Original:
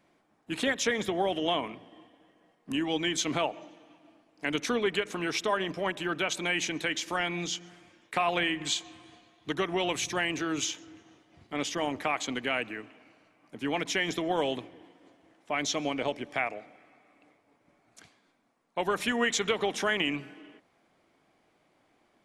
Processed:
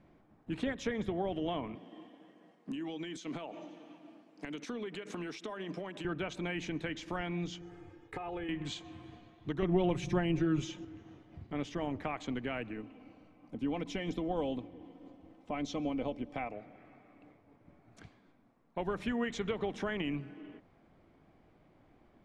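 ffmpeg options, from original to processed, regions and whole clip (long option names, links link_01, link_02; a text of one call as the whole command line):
ffmpeg -i in.wav -filter_complex "[0:a]asettb=1/sr,asplit=3[link_01][link_02][link_03];[link_01]atrim=end=1.754[link_04];[link_02]atrim=start=1.75:end=6.05,asetpts=PTS-STARTPTS,afade=type=in:duration=0.004:curve=qsin,afade=type=out:start_time=4.296:duration=0.004:curve=qsin,highpass=frequency=180:width=0.5412,highpass=frequency=180:width=1.3066,equalizer=frequency=7800:width=0.43:gain=9,acompressor=threshold=-33dB:ratio=8:attack=3.2:release=140:knee=1:detection=peak[link_05];[link_03]atrim=start=6.046[link_06];[link_04][link_05]acrossfade=duration=0.004:curve1=hsin:curve2=qsin[link_07];[link_07][link_06]acrossfade=duration=0.004:curve1=qsin:curve2=hsin,asettb=1/sr,asplit=3[link_08][link_09][link_10];[link_08]atrim=end=7.614[link_11];[link_09]atrim=start=7.61:end=8.49,asetpts=PTS-STARTPTS,afade=type=in:duration=0.004:curve=qsin,afade=type=out:start_time=0.876:duration=0.004:curve=qsin,equalizer=frequency=3500:width=0.63:gain=-7.5,aecho=1:1:2.4:0.88,atrim=end_sample=38808,acompressor=threshold=-35dB:ratio=3:attack=3.2:release=140:knee=1:detection=peak[link_12];[link_10]atrim=start=8.486[link_13];[link_11][link_12]acrossfade=duration=0.004:curve1=hsin:curve2=qsin[link_14];[link_14][link_13]acrossfade=duration=0.004:curve1=qsin:curve2=hsin,asettb=1/sr,asplit=3[link_15][link_16][link_17];[link_15]atrim=end=9.624[link_18];[link_16]atrim=start=9.62:end=10.85,asetpts=PTS-STARTPTS,afade=type=in:duration=0.004:curve=qsin,afade=type=out:start_time=1.226:duration=0.004:curve=qsin,lowshelf=frequency=400:gain=7,bandreject=frequency=4400:width=19,aecho=1:1:5.6:0.98,atrim=end_sample=54243[link_19];[link_17]atrim=start=10.846[link_20];[link_18][link_19]acrossfade=duration=0.004:curve1=hsin:curve2=qsin[link_21];[link_21][link_20]acrossfade=duration=0.004:curve1=qsin:curve2=hsin,asettb=1/sr,asplit=3[link_22][link_23][link_24];[link_22]atrim=end=12.734[link_25];[link_23]atrim=start=12.73:end=16.52,asetpts=PTS-STARTPTS,afade=type=in:duration=0.004:curve=qsin,afade=type=out:start_time=3.786:duration=0.004:curve=qsin,equalizer=frequency=1700:width_type=o:width=0.6:gain=-8.5,aecho=1:1:3.9:0.4,atrim=end_sample=167139[link_26];[link_24]atrim=start=16.516[link_27];[link_25][link_26]acrossfade=duration=0.004:curve1=hsin:curve2=qsin[link_28];[link_28][link_27]acrossfade=duration=0.004:curve1=qsin:curve2=hsin,aemphasis=mode=reproduction:type=riaa,acompressor=threshold=-48dB:ratio=1.5" out.wav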